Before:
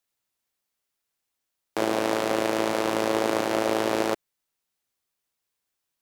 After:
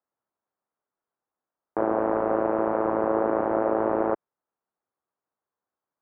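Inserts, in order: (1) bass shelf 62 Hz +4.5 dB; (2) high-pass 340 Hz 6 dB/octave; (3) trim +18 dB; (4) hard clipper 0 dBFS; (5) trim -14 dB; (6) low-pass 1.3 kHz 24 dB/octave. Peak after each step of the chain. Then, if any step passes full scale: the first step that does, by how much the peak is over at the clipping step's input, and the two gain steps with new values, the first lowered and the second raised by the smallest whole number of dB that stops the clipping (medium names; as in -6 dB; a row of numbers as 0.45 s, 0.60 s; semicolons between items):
-9.0 dBFS, -9.5 dBFS, +8.5 dBFS, 0.0 dBFS, -14.0 dBFS, -12.0 dBFS; step 3, 8.5 dB; step 3 +9 dB, step 5 -5 dB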